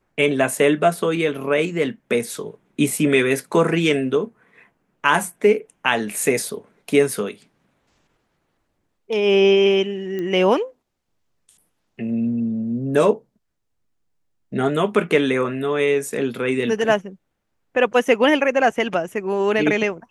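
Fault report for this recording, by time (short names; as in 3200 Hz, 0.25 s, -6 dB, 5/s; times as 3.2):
10.19 pop -17 dBFS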